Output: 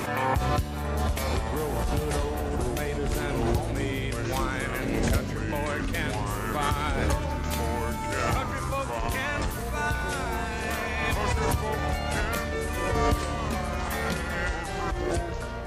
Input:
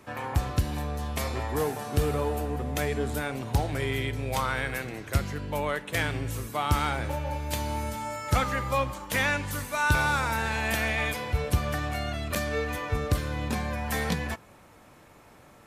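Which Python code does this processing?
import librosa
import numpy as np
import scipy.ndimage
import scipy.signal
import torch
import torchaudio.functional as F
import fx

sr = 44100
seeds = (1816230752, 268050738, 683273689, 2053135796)

y = fx.rider(x, sr, range_db=10, speed_s=0.5)
y = fx.echo_pitch(y, sr, ms=634, semitones=-4, count=3, db_per_echo=-3.0)
y = fx.pre_swell(y, sr, db_per_s=24.0)
y = y * librosa.db_to_amplitude(-3.5)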